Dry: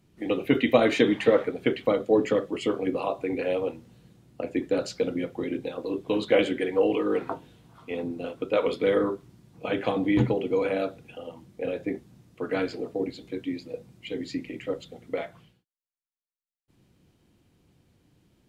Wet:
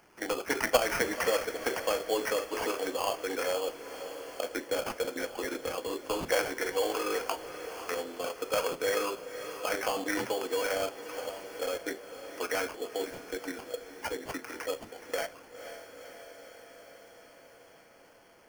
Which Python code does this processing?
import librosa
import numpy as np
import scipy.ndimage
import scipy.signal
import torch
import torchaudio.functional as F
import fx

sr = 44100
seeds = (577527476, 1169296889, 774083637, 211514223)

p1 = scipy.signal.sosfilt(scipy.signal.butter(2, 730.0, 'highpass', fs=sr, output='sos'), x)
p2 = fx.high_shelf(p1, sr, hz=3900.0, db=-4.5)
p3 = fx.level_steps(p2, sr, step_db=22)
p4 = p2 + F.gain(torch.from_numpy(p3), 0.5).numpy()
p5 = fx.sample_hold(p4, sr, seeds[0], rate_hz=3800.0, jitter_pct=0)
p6 = fx.echo_diffused(p5, sr, ms=502, feedback_pct=60, wet_db=-15.0)
y = fx.band_squash(p6, sr, depth_pct=40)